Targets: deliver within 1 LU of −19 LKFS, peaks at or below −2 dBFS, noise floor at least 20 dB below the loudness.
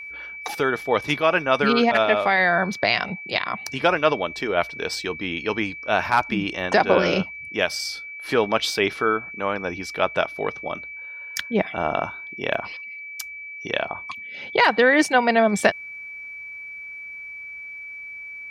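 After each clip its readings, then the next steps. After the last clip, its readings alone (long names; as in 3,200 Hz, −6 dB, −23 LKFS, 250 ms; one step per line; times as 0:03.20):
number of dropouts 2; longest dropout 3.9 ms; interfering tone 2,300 Hz; level of the tone −34 dBFS; integrated loudness −22.0 LKFS; sample peak −4.0 dBFS; target loudness −19.0 LKFS
→ repair the gap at 0:06.31/0:12.54, 3.9 ms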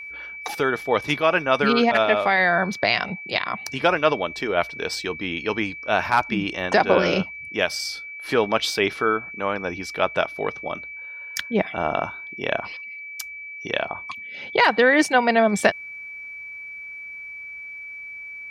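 number of dropouts 0; interfering tone 2,300 Hz; level of the tone −34 dBFS
→ notch filter 2,300 Hz, Q 30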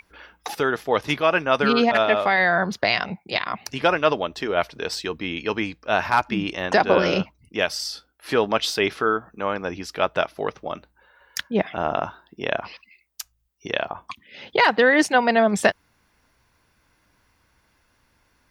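interfering tone none found; integrated loudness −22.5 LKFS; sample peak −4.5 dBFS; target loudness −19.0 LKFS
→ level +3.5 dB
brickwall limiter −2 dBFS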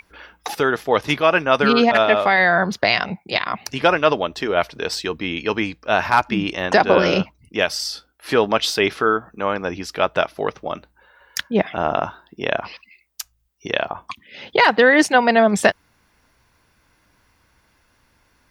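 integrated loudness −19.0 LKFS; sample peak −2.0 dBFS; background noise floor −62 dBFS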